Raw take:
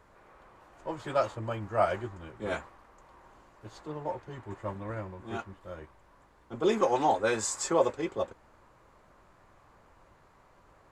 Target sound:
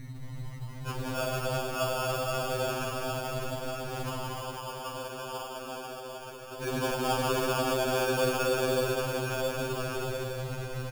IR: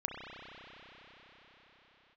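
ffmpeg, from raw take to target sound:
-filter_complex "[1:a]atrim=start_sample=2205,asetrate=27342,aresample=44100[a];[0:a][a]afir=irnorm=-1:irlink=0,aeval=exprs='val(0)+0.0178*(sin(2*PI*50*n/s)+sin(2*PI*2*50*n/s)/2+sin(2*PI*3*50*n/s)/3+sin(2*PI*4*50*n/s)/4+sin(2*PI*5*50*n/s)/5)':c=same,asoftclip=type=tanh:threshold=-23.5dB,asettb=1/sr,asplit=3[b][c][d];[b]atrim=end=4.424[e];[c]atrim=start=4.42:end=6.61,asetpts=PTS-STARTPTS,afade=t=in:d=0.004:c=qsin,afade=t=out:st=2.186:d=0.004:c=qsin,highpass=f=570:p=1[f];[d]atrim=start=6.606[g];[e][f]acrossfade=d=0.004:c1=hsin:c2=qsin[h];[h][g]acrossfade=d=0.004:c1=qsin:c2=hsin,aecho=1:1:182|364|546|728|910|1092|1274|1456:0.596|0.34|0.194|0.11|0.0629|0.0358|0.0204|0.0116,afftfilt=real='hypot(re,im)*cos(2*PI*random(0))':imag='hypot(re,im)*sin(2*PI*random(1))':win_size=512:overlap=0.75,lowpass=1.7k,acrusher=samples=22:mix=1:aa=0.000001,afftfilt=real='re*2.45*eq(mod(b,6),0)':imag='im*2.45*eq(mod(b,6),0)':win_size=2048:overlap=0.75,volume=5dB"

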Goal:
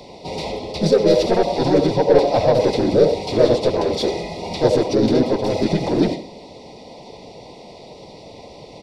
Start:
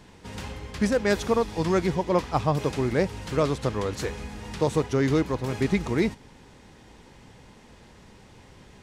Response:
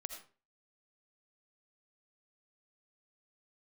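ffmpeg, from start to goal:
-filter_complex "[0:a]asuperstop=centerf=1800:order=20:qfactor=1.7,asplit=2[a][b];[1:a]atrim=start_sample=2205,lowshelf=f=72:g=-5.5[c];[b][c]afir=irnorm=-1:irlink=0,volume=3dB[d];[a][d]amix=inputs=2:normalize=0,asplit=2[e][f];[f]highpass=f=720:p=1,volume=22dB,asoftclip=type=tanh:threshold=-4.5dB[g];[e][g]amix=inputs=2:normalize=0,lowpass=f=1.1k:p=1,volume=-6dB,superequalizer=8b=2.24:10b=0.251:13b=0.708:14b=3.55:16b=1.58,asplit=4[h][i][j][k];[i]asetrate=33038,aresample=44100,atempo=1.33484,volume=-15dB[l];[j]asetrate=35002,aresample=44100,atempo=1.25992,volume=0dB[m];[k]asetrate=37084,aresample=44100,atempo=1.18921,volume=-2dB[n];[h][l][m][n]amix=inputs=4:normalize=0,volume=-7.5dB"

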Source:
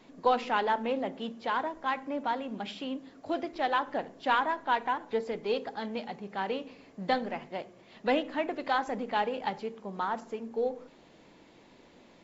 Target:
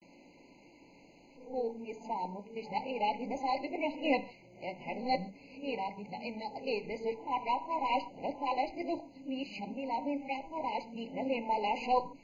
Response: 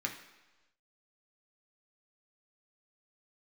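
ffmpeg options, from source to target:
-filter_complex "[0:a]areverse,asplit=2[a][b];[1:a]atrim=start_sample=2205,atrim=end_sample=6615[c];[b][c]afir=irnorm=-1:irlink=0,volume=-5.5dB[d];[a][d]amix=inputs=2:normalize=0,asubboost=boost=4:cutoff=110,afftfilt=real='re*eq(mod(floor(b*sr/1024/1000),2),0)':imag='im*eq(mod(floor(b*sr/1024/1000),2),0)':win_size=1024:overlap=0.75,volume=-3dB"

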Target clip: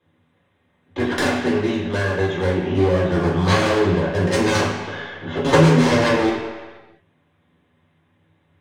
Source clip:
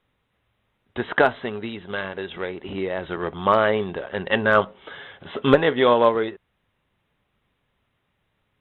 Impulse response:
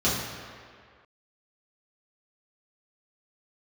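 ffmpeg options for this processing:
-filter_complex "[0:a]aeval=exprs='clip(val(0),-1,0.0631)':c=same,aeval=exprs='0.596*(cos(1*acos(clip(val(0)/0.596,-1,1)))-cos(1*PI/2))+0.188*(cos(6*acos(clip(val(0)/0.596,-1,1)))-cos(6*PI/2))':c=same[a];[1:a]atrim=start_sample=2205,asetrate=61740,aresample=44100[b];[a][b]afir=irnorm=-1:irlink=0,volume=-5.5dB"

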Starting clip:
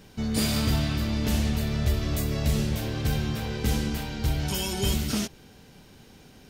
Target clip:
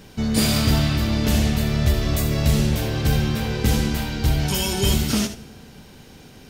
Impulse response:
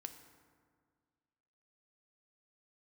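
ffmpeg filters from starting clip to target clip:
-filter_complex "[0:a]asplit=2[a][b];[1:a]atrim=start_sample=2205,adelay=76[c];[b][c]afir=irnorm=-1:irlink=0,volume=-6dB[d];[a][d]amix=inputs=2:normalize=0,volume=6dB"

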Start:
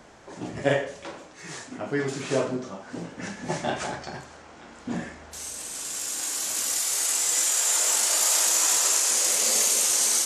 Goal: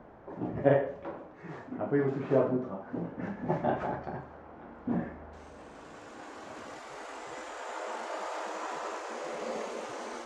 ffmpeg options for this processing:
-af "lowpass=1.1k"

